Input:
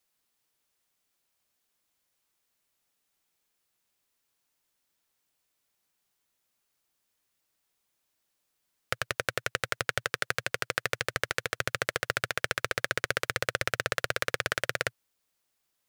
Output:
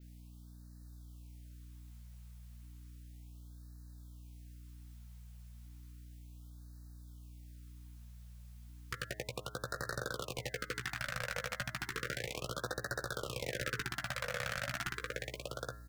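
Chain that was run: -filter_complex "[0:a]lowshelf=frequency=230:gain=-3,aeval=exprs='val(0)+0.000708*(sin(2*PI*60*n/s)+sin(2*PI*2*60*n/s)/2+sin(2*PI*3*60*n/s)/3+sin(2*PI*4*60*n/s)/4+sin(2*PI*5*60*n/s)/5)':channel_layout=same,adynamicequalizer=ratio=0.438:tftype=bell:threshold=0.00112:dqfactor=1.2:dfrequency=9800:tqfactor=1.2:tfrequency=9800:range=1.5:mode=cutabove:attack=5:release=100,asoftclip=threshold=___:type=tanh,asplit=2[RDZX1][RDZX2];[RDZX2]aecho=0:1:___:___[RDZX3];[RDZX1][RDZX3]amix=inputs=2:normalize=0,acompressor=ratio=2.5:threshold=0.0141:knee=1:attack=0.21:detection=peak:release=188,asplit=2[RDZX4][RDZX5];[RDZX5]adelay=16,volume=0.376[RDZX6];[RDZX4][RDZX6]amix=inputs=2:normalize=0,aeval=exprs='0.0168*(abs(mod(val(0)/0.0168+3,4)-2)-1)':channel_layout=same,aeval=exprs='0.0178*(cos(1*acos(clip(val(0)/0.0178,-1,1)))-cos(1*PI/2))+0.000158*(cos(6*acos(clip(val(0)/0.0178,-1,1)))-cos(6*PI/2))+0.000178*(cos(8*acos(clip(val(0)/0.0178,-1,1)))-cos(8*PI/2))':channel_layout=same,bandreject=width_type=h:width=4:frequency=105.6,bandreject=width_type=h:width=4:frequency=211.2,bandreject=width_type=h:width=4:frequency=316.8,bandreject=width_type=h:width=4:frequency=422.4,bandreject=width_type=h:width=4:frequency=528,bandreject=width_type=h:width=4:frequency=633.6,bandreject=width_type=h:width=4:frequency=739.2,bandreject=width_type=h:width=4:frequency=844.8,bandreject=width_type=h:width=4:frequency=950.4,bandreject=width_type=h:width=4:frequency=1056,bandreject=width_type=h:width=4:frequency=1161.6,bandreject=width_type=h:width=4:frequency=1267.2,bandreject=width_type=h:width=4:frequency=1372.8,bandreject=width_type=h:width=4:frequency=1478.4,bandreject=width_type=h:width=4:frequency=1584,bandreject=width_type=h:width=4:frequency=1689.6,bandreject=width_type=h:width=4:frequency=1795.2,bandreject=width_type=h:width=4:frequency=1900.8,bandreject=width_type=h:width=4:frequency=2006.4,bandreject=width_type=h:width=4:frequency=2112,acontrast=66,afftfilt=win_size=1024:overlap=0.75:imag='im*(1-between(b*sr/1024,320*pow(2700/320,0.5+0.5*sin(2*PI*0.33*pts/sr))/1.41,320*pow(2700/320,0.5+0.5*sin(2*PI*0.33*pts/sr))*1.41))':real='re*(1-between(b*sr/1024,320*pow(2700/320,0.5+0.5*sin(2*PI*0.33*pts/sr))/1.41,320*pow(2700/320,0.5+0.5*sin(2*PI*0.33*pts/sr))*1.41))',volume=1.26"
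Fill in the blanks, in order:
0.0891, 819, 0.398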